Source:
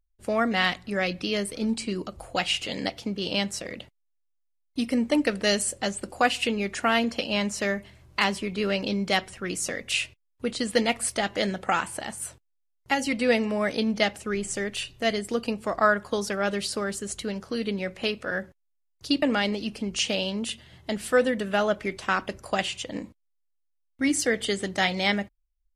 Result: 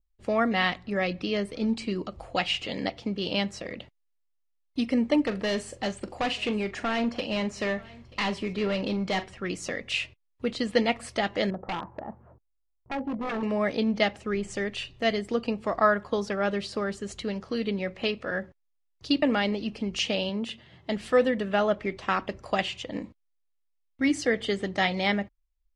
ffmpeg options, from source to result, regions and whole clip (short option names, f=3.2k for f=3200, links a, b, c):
-filter_complex "[0:a]asettb=1/sr,asplit=3[a][b][c];[a]atrim=end=5.224[d];[b]atrim=start=5.22:end=9.26,asetpts=PTS-STARTPTS,afade=t=in:d=0.004:c=qsin,afade=t=out:st=4.036:d=0.004:c=qsin,asoftclip=type=hard:threshold=-23dB,asplit=2[e][f];[f]adelay=42,volume=-13dB[g];[e][g]amix=inputs=2:normalize=0,atrim=end_sample=178164,aecho=1:1:934:0.0708,atrim=end_sample=178164[h];[c]atrim=start=9.256[i];[d][h]acrossfade=d=0.004:c1=hsin:c2=qsin[j];[j][i]acrossfade=d=0.004:c1=qsin:c2=hsin,asettb=1/sr,asplit=3[k][l][m];[k]atrim=end=11.504[n];[l]atrim=start=11.5:end=13.43,asetpts=PTS-STARTPTS,afade=t=in:d=0.004:c=qsin,afade=t=out:st=1.926:d=0.004:c=qsin,lowpass=f=1.1k:w=0.5412,lowpass=f=1.1k:w=1.3066,tremolo=f=45:d=0.261,aeval=exprs='0.0531*(abs(mod(val(0)/0.0531+3,4)-2)-1)':c=same[o];[m]atrim=start=13.426[p];[n][o]acrossfade=d=0.004:c1=hsin:c2=qsin[q];[q][p]acrossfade=d=0.004:c1=qsin:c2=hsin,asettb=1/sr,asplit=3[r][s][t];[r]atrim=end=20.294[u];[s]atrim=start=20.29:end=20.9,asetpts=PTS-STARTPTS,afade=t=in:d=0.004:c=qsin,afade=t=out:st=0.606:d=0.004:c=qsin,highpass=110,highshelf=f=4.1k:g=-5.5[v];[t]atrim=start=20.896[w];[u][v]acrossfade=d=0.004:c1=hsin:c2=qsin[x];[x][w]acrossfade=d=0.004:c1=qsin:c2=hsin,lowpass=4.7k,bandreject=f=1.5k:w=15,adynamicequalizer=threshold=0.01:dfrequency=1900:dqfactor=0.7:tfrequency=1900:tqfactor=0.7:attack=5:release=100:ratio=0.375:range=2.5:mode=cutabove:tftype=highshelf"